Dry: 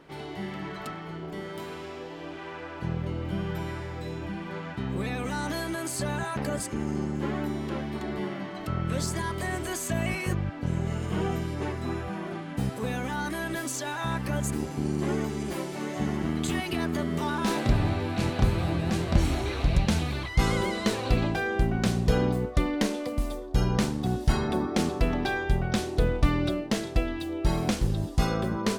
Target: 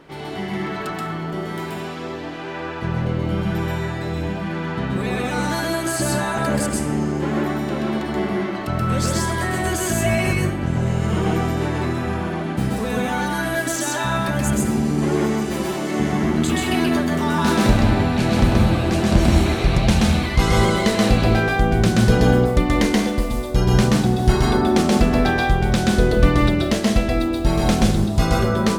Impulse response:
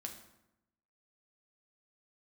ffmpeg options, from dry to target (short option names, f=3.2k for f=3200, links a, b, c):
-filter_complex "[0:a]asplit=2[a][b];[1:a]atrim=start_sample=2205,lowshelf=f=170:g=-4.5,adelay=129[c];[b][c]afir=irnorm=-1:irlink=0,volume=4dB[d];[a][d]amix=inputs=2:normalize=0,volume=6dB"